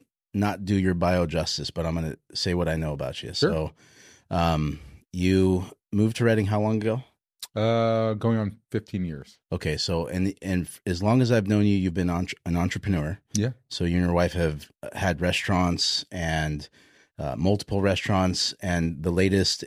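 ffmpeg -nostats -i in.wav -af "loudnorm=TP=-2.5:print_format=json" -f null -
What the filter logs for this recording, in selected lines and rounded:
"input_i" : "-25.4",
"input_tp" : "-8.4",
"input_lra" : "2.5",
"input_thresh" : "-35.8",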